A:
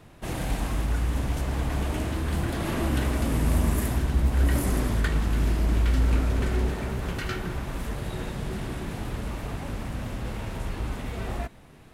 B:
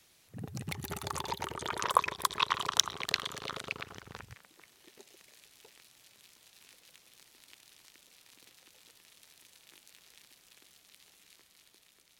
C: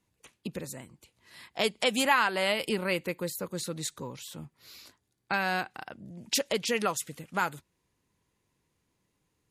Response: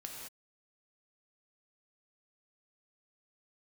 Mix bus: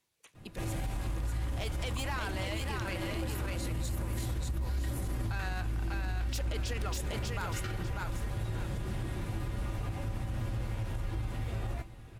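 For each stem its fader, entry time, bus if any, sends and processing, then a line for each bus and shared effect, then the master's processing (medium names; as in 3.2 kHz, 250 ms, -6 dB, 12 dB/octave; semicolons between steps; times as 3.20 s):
+2.5 dB, 0.35 s, no send, echo send -17 dB, bass shelf 87 Hz +9.5 dB; compression 2.5:1, threshold -20 dBFS, peak gain reduction 6.5 dB; feedback comb 110 Hz, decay 0.18 s, harmonics odd, mix 80%
-18.0 dB, 0.00 s, no send, no echo send, none
-3.5 dB, 0.00 s, no send, echo send -4 dB, bass shelf 320 Hz -11.5 dB; saturation -23 dBFS, distortion -12 dB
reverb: none
echo: feedback delay 595 ms, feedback 27%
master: peak limiter -26.5 dBFS, peak gain reduction 9.5 dB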